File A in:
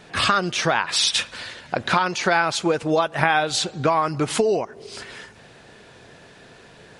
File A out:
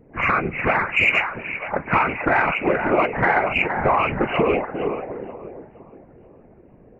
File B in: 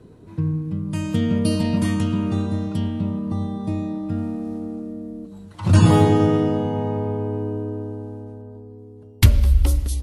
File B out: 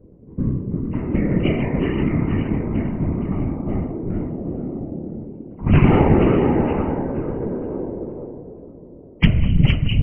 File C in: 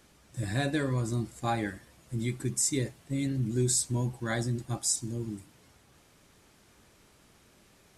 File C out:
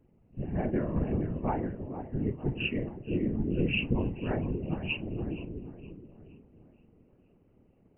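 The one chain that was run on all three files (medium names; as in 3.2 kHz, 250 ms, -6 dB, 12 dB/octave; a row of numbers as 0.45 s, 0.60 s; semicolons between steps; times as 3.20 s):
knee-point frequency compression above 1.9 kHz 4:1; two-band feedback delay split 530 Hz, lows 352 ms, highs 472 ms, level -6.5 dB; level-controlled noise filter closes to 400 Hz, open at -10.5 dBFS; in parallel at -10.5 dB: saturation -11.5 dBFS; on the sum: whisper effect; loudspeaker Doppler distortion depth 0.11 ms; trim -2 dB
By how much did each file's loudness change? +1.0 LU, +0.5 LU, -1.5 LU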